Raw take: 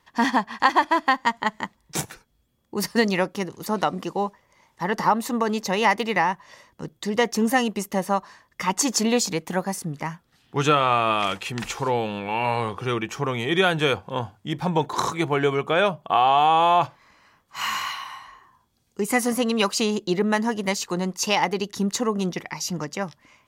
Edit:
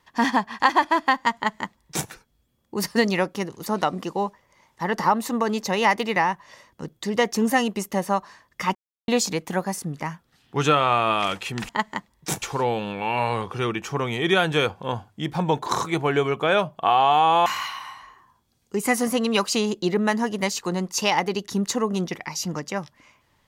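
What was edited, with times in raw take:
0:01.36–0:02.09: duplicate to 0:11.69
0:08.75–0:09.08: silence
0:16.73–0:17.71: remove

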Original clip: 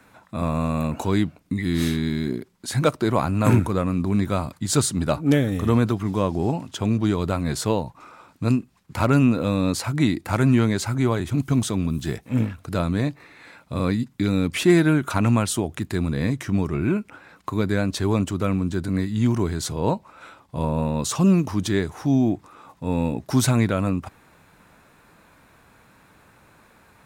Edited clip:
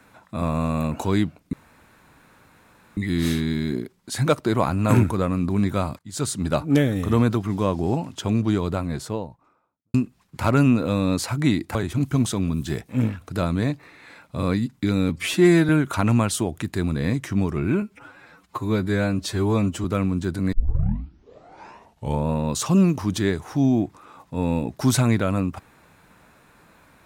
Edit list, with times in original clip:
0:01.53: splice in room tone 1.44 s
0:04.55–0:05.08: fade in, from −21.5 dB
0:06.94–0:08.50: fade out and dull
0:10.31–0:11.12: remove
0:14.46–0:14.86: time-stretch 1.5×
0:16.99–0:18.34: time-stretch 1.5×
0:19.02: tape start 1.74 s

